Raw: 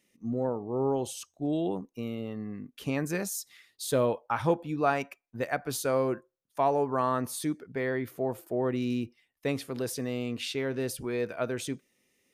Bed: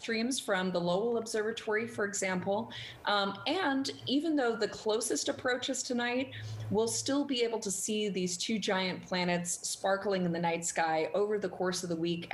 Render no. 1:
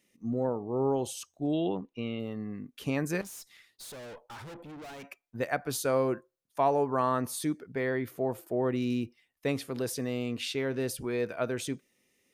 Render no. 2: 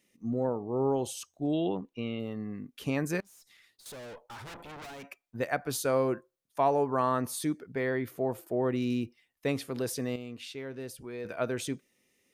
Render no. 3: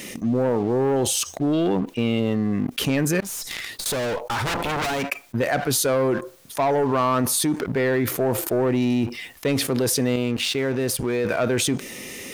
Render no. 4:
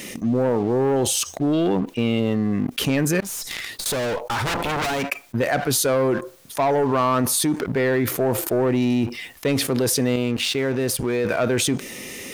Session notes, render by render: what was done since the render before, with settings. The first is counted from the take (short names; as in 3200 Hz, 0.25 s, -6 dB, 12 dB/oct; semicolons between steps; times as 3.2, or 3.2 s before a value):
1.53–2.2 synth low-pass 3100 Hz, resonance Q 2; 3.21–5.04 tube stage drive 43 dB, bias 0.4
3.2–3.86 compressor 10:1, threshold -55 dBFS; 4.45–4.85 spectral limiter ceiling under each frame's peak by 18 dB; 10.16–11.25 gain -8.5 dB
sample leveller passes 2; fast leveller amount 70%
gain +1 dB